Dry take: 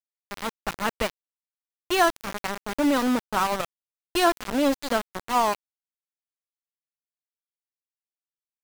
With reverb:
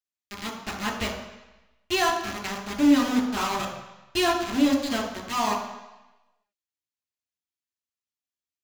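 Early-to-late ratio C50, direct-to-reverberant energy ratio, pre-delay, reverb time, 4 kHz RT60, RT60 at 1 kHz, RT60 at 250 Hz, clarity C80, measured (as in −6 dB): 5.5 dB, −0.5 dB, 3 ms, 1.0 s, 1.0 s, 1.1 s, 0.95 s, 8.0 dB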